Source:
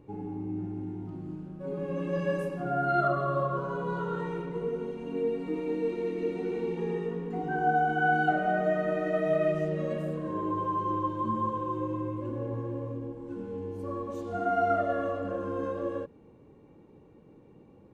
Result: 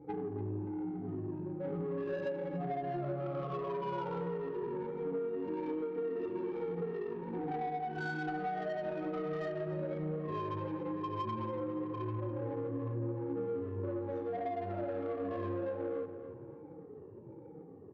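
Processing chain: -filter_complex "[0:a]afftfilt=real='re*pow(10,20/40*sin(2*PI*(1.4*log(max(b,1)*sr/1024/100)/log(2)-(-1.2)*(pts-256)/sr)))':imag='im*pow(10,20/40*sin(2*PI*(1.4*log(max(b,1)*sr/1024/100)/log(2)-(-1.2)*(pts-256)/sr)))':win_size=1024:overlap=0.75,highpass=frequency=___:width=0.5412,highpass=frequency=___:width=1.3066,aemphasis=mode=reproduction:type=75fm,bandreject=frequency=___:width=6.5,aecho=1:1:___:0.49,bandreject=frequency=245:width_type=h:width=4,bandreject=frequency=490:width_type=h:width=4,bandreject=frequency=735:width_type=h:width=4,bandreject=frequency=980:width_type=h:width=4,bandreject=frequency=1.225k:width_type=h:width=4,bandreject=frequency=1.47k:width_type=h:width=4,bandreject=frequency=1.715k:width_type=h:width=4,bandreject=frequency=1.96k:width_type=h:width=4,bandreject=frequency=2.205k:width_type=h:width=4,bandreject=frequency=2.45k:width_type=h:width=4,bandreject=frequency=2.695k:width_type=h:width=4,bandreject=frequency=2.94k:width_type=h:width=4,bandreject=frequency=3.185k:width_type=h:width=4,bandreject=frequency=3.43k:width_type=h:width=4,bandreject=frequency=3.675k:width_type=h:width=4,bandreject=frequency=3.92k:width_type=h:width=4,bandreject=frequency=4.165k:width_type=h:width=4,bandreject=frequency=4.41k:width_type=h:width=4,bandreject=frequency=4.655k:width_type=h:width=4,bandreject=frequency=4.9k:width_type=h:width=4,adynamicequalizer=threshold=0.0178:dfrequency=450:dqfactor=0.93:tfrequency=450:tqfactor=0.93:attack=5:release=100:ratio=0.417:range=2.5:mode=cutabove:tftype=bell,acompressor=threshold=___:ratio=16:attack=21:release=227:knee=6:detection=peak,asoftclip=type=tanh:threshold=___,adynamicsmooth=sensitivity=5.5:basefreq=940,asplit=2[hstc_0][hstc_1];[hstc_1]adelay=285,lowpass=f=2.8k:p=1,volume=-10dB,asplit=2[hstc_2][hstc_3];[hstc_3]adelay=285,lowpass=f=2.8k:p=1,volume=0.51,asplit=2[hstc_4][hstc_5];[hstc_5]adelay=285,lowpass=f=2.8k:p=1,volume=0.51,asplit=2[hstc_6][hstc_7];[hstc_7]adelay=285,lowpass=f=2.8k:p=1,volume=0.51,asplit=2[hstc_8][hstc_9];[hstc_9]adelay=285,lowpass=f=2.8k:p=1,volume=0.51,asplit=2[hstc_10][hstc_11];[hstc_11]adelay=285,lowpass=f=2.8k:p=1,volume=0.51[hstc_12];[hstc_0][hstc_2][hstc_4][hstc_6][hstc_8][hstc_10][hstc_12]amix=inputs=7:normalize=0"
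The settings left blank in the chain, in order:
100, 100, 1.4k, 2.3, -33dB, -28dB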